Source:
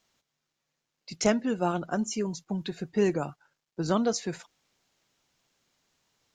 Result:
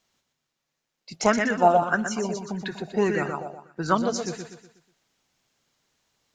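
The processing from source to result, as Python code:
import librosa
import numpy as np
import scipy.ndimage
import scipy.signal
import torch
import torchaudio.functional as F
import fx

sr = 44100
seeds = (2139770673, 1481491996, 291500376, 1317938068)

y = fx.echo_feedback(x, sr, ms=122, feedback_pct=41, wet_db=-6)
y = fx.bell_lfo(y, sr, hz=1.7, low_hz=640.0, high_hz=1900.0, db=16, at=(1.14, 3.95))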